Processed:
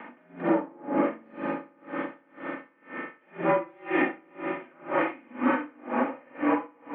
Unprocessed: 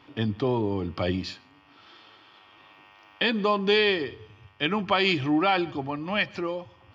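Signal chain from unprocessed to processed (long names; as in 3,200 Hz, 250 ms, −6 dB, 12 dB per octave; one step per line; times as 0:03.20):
lower of the sound and its delayed copy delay 3.2 ms
in parallel at −2 dB: upward compression, threshold −29 dBFS
on the sum: brickwall limiter −20.5 dBFS, peak gain reduction 14 dB
on a send: echo that builds up and dies away 111 ms, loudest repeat 5, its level −16.5 dB
on the sum: spring reverb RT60 1.3 s, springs 40/58 ms, chirp 30 ms, DRR −6 dB
single-sideband voice off tune −51 Hz 310–2,200 Hz
tremolo with a sine in dB 2 Hz, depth 32 dB
level +2 dB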